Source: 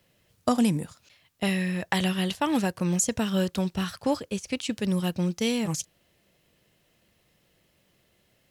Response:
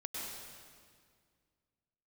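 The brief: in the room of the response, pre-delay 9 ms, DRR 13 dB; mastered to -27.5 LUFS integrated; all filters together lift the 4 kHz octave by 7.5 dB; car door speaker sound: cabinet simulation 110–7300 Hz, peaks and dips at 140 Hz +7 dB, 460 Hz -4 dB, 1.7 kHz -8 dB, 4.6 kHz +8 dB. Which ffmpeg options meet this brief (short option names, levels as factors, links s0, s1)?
-filter_complex "[0:a]equalizer=f=4000:t=o:g=7.5,asplit=2[s0][s1];[1:a]atrim=start_sample=2205,adelay=9[s2];[s1][s2]afir=irnorm=-1:irlink=0,volume=0.2[s3];[s0][s3]amix=inputs=2:normalize=0,highpass=110,equalizer=f=140:t=q:w=4:g=7,equalizer=f=460:t=q:w=4:g=-4,equalizer=f=1700:t=q:w=4:g=-8,equalizer=f=4600:t=q:w=4:g=8,lowpass=f=7300:w=0.5412,lowpass=f=7300:w=1.3066,volume=0.841"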